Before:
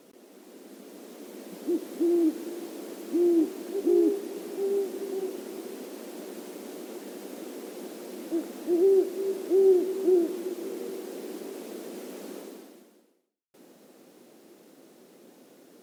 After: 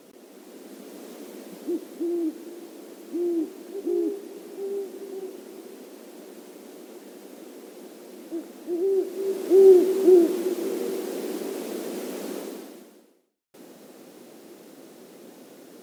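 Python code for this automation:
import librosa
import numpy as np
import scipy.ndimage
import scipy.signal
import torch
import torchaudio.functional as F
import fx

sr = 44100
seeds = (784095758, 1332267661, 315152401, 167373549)

y = fx.gain(x, sr, db=fx.line((1.11, 4.0), (2.08, -3.5), (8.86, -3.5), (9.63, 7.0)))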